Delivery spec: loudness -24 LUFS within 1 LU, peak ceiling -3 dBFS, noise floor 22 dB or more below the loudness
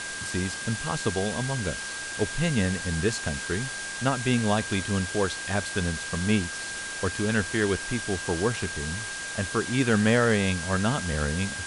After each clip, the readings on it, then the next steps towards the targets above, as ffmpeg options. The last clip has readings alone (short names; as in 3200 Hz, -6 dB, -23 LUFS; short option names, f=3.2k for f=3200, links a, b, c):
steady tone 1600 Hz; tone level -35 dBFS; noise floor -35 dBFS; noise floor target -49 dBFS; loudness -27.0 LUFS; peak -8.5 dBFS; loudness target -24.0 LUFS
-> -af "bandreject=f=1.6k:w=30"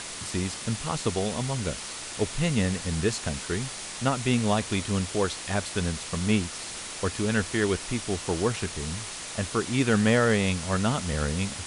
steady tone none; noise floor -38 dBFS; noise floor target -50 dBFS
-> -af "afftdn=nr=12:nf=-38"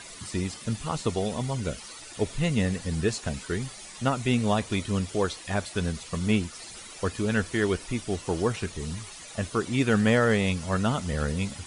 noise floor -44 dBFS; noise floor target -50 dBFS
-> -af "afftdn=nr=6:nf=-44"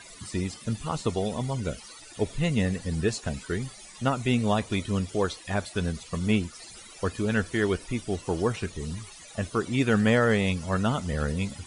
noise floor -47 dBFS; noise floor target -50 dBFS
-> -af "afftdn=nr=6:nf=-47"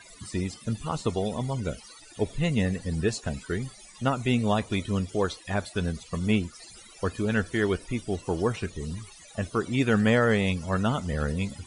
noise floor -50 dBFS; loudness -28.0 LUFS; peak -9.0 dBFS; loudness target -24.0 LUFS
-> -af "volume=4dB"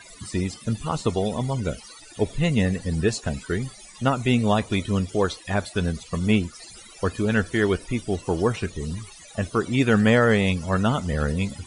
loudness -24.0 LUFS; peak -5.0 dBFS; noise floor -46 dBFS